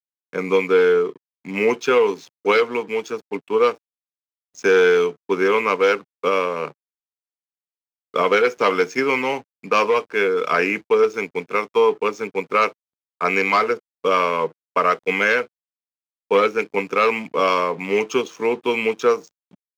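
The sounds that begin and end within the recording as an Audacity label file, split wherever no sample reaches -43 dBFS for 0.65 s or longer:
4.550000	6.710000	sound
8.140000	15.470000	sound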